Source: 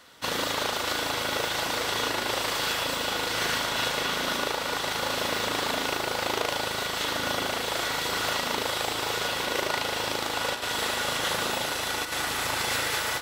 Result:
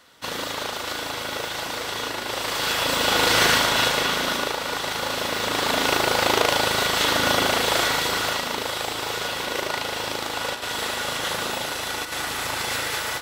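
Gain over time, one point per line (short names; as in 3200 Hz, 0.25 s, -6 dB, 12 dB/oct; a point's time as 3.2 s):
2.25 s -1 dB
3.3 s +10.5 dB
4.57 s +2 dB
5.33 s +2 dB
5.96 s +8 dB
7.78 s +8 dB
8.5 s +1 dB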